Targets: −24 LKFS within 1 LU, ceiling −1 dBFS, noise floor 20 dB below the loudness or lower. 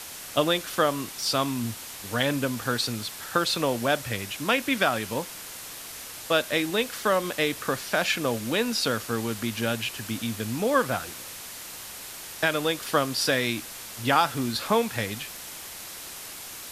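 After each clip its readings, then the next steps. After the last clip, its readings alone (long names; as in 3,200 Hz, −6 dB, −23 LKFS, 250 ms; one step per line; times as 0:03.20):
background noise floor −40 dBFS; target noise floor −47 dBFS; integrated loudness −27.0 LKFS; sample peak −7.5 dBFS; target loudness −24.0 LKFS
→ broadband denoise 7 dB, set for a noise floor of −40 dBFS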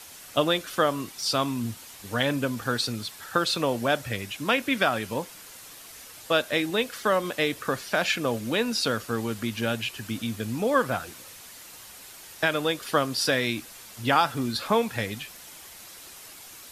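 background noise floor −46 dBFS; target noise floor −47 dBFS
→ broadband denoise 6 dB, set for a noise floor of −46 dBFS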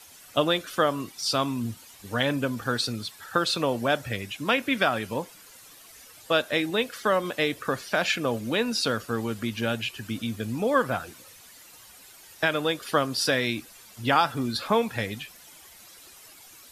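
background noise floor −50 dBFS; integrated loudness −26.5 LKFS; sample peak −8.0 dBFS; target loudness −24.0 LKFS
→ level +2.5 dB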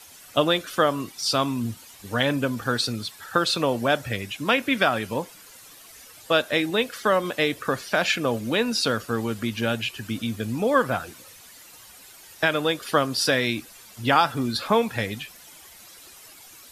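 integrated loudness −24.0 LKFS; sample peak −5.5 dBFS; background noise floor −48 dBFS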